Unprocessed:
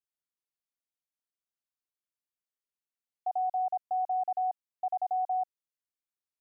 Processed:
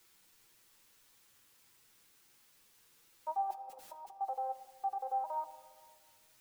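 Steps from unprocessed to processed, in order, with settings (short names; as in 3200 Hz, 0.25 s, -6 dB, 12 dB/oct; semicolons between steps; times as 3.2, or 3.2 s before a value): arpeggiated vocoder minor triad, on C4, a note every 0.238 s; tilt +2.5 dB/oct; requantised 12-bit, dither triangular; bell 660 Hz -9 dB 0.26 oct; limiter -36.5 dBFS, peak gain reduction 10 dB; 3.5–4.21 negative-ratio compressor -50 dBFS, ratio -0.5; flange 1.7 Hz, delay 8 ms, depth 1.9 ms, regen +45%; reverb RT60 1.8 s, pre-delay 6 ms, DRR 9.5 dB; gain +9.5 dB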